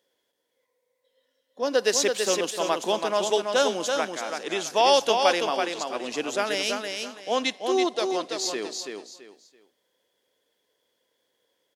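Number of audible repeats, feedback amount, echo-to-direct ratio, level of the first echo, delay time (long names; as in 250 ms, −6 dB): 3, 26%, −4.5 dB, −5.0 dB, 332 ms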